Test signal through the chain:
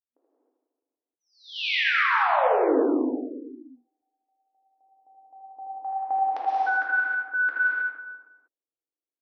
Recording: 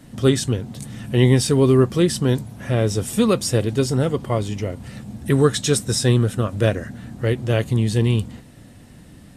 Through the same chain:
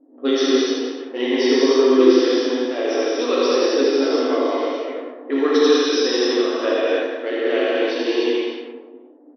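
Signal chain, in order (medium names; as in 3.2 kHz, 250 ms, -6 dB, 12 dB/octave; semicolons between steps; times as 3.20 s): level-controlled noise filter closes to 780 Hz, open at -14.5 dBFS; on a send: reverse bouncing-ball echo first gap 80 ms, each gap 1.25×, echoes 5; on the sum: gated-style reverb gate 340 ms flat, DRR -6.5 dB; FFT band-pass 240–6100 Hz; in parallel at +1 dB: gain riding within 3 dB 2 s; on the sum: level-controlled noise filter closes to 540 Hz, open at -7 dBFS; trim -12 dB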